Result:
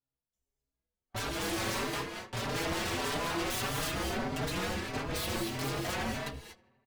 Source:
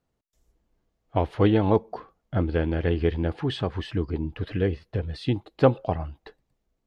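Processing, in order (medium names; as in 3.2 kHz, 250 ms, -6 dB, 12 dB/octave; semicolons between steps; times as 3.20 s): treble shelf 3.7 kHz +5.5 dB; inharmonic resonator 66 Hz, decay 0.24 s, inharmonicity 0.002; 3.57–5.11 s: compression, threshold -35 dBFS, peak gain reduction 10.5 dB; waveshaping leveller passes 5; de-hum 111.8 Hz, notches 4; wavefolder -27 dBFS; filtered feedback delay 81 ms, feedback 72%, low-pass 4 kHz, level -21.5 dB; gated-style reverb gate 260 ms rising, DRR 2.5 dB; endless flanger 4.6 ms +1.6 Hz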